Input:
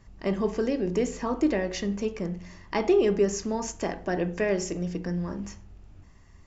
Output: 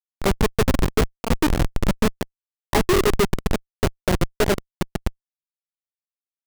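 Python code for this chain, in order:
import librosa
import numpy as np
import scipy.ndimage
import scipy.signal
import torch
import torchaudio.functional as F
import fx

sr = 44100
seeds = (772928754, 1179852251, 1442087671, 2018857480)

y = scipy.signal.sosfilt(scipy.signal.butter(2, 72.0, 'highpass', fs=sr, output='sos'), x)
y = fx.echo_thinned(y, sr, ms=164, feedback_pct=60, hz=320.0, wet_db=-9.0)
y = fx.rev_gated(y, sr, seeds[0], gate_ms=140, shape='rising', drr_db=8.5)
y = fx.transient(y, sr, attack_db=11, sustain_db=-7)
y = fx.schmitt(y, sr, flips_db=-19.0)
y = fx.upward_expand(y, sr, threshold_db=-37.0, expansion=1.5)
y = y * librosa.db_to_amplitude(8.0)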